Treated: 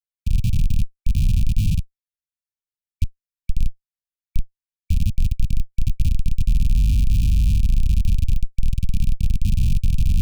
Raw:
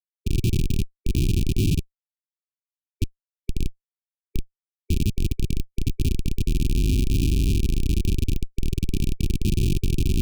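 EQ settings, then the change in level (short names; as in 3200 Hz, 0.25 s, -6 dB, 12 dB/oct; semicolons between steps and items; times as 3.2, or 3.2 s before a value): inverse Chebyshev band-stop 380–820 Hz, stop band 50 dB; low shelf 97 Hz +11.5 dB; -4.0 dB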